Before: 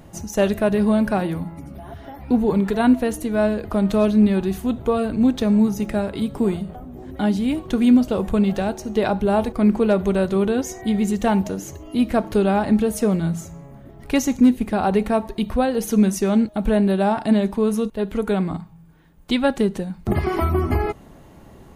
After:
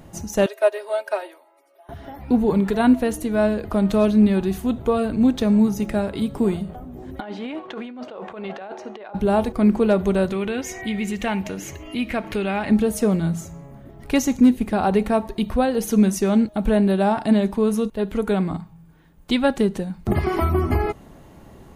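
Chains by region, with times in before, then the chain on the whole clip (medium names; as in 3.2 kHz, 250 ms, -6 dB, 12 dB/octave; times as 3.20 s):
0.46–1.89 s: steep high-pass 410 Hz 48 dB/octave + comb 3.2 ms, depth 76% + upward expansion, over -39 dBFS
7.20–9.15 s: band-pass 530–2400 Hz + compressor with a negative ratio -33 dBFS
10.32–12.70 s: peaking EQ 2.3 kHz +13.5 dB 1.1 oct + compression 1.5:1, threshold -31 dBFS
whole clip: none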